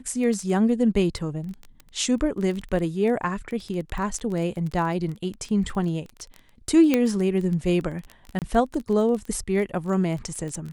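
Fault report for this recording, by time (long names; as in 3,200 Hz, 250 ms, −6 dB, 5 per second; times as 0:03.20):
surface crackle 15 per second −29 dBFS
0:03.23: drop-out 2.2 ms
0:06.94: click −7 dBFS
0:08.39–0:08.42: drop-out 28 ms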